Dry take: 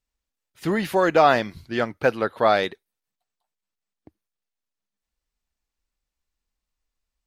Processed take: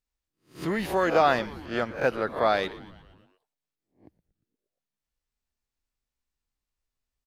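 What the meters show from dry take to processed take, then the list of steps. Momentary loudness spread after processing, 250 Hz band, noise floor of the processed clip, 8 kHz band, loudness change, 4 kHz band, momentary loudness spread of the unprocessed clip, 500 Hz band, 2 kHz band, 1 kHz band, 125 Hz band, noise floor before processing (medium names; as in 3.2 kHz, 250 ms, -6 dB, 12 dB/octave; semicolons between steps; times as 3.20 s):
12 LU, -4.5 dB, under -85 dBFS, no reading, -4.5 dB, -4.0 dB, 11 LU, -4.5 dB, -4.0 dB, -4.5 dB, -4.5 dB, under -85 dBFS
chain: reverse spectral sustain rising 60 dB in 0.32 s; on a send: frequency-shifting echo 117 ms, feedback 62%, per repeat -140 Hz, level -18 dB; on the sum: trim -5.5 dB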